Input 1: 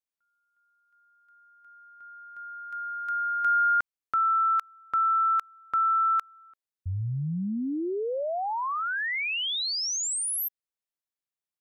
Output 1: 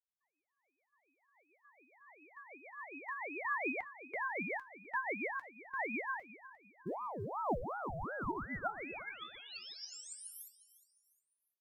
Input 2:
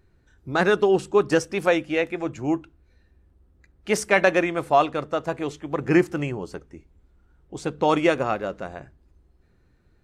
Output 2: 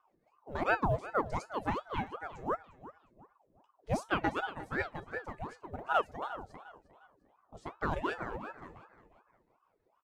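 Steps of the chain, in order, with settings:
reverb reduction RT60 0.79 s
parametric band 2,800 Hz −6 dB 0.38 octaves
harmonic and percussive parts rebalanced percussive −7 dB
high-shelf EQ 3,600 Hz −5.5 dB
rotating-speaker cabinet horn 7 Hz
tuned comb filter 210 Hz, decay 0.2 s, harmonics odd, mix 80%
floating-point word with a short mantissa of 6 bits
on a send: repeating echo 354 ms, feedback 35%, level −16 dB
on the sum: ring modulator whose carrier an LFO sweeps 690 Hz, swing 65%, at 2.7 Hz
level +7 dB

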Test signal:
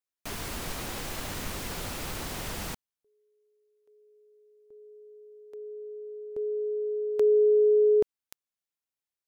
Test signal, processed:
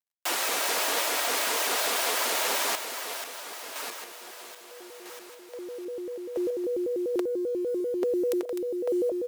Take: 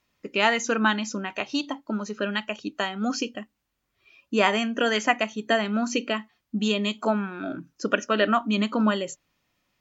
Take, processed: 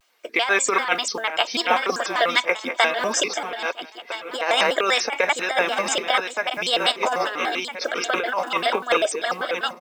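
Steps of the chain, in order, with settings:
feedback delay that plays each chunk backwards 650 ms, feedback 59%, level −9 dB
log-companded quantiser 8 bits
compressor whose output falls as the input rises −24 dBFS, ratio −0.5
high-pass filter 440 Hz 24 dB per octave
comb filter 3.6 ms, depth 33%
pitch modulation by a square or saw wave square 5.1 Hz, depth 250 cents
level +7.5 dB

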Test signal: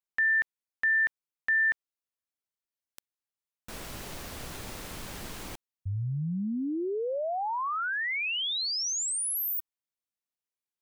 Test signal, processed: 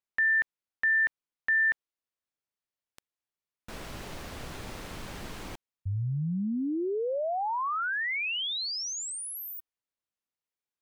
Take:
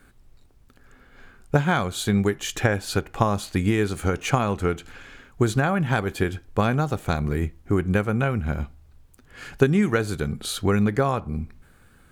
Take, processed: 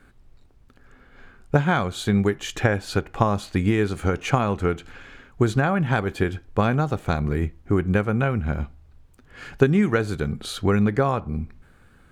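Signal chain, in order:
low-pass filter 4,000 Hz 6 dB per octave
level +1 dB

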